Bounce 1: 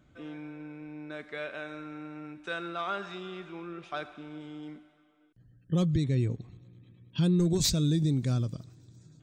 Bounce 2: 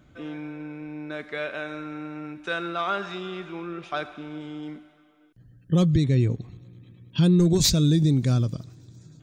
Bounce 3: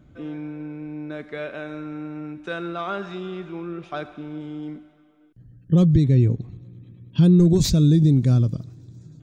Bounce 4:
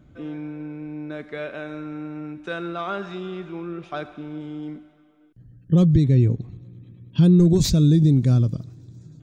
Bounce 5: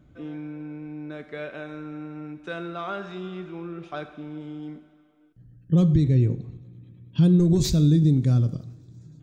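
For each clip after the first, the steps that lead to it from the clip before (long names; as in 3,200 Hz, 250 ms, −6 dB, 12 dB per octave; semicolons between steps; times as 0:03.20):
notch filter 8,000 Hz, Q 12; level +6.5 dB
tilt shelving filter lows +5 dB, about 630 Hz
no processing that can be heard
dense smooth reverb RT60 0.75 s, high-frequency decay 0.75×, DRR 11.5 dB; level −3.5 dB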